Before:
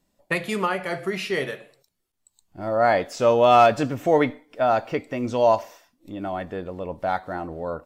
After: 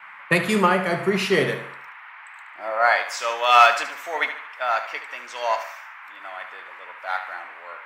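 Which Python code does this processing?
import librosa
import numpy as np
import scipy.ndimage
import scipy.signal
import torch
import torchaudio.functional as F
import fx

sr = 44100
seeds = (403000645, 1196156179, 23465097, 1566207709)

p1 = fx.filter_sweep_highpass(x, sr, from_hz=130.0, to_hz=1400.0, start_s=1.56, end_s=2.96, q=1.1)
p2 = fx.dmg_noise_band(p1, sr, seeds[0], low_hz=870.0, high_hz=2300.0, level_db=-41.0)
p3 = p2 + fx.echo_feedback(p2, sr, ms=74, feedback_pct=45, wet_db=-10.5, dry=0)
p4 = fx.band_widen(p3, sr, depth_pct=40)
y = p4 * librosa.db_to_amplitude(4.0)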